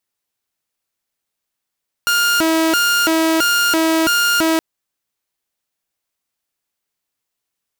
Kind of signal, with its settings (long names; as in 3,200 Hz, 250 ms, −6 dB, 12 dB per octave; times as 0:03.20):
siren hi-lo 323–1,410 Hz 1.5 per second saw −10.5 dBFS 2.52 s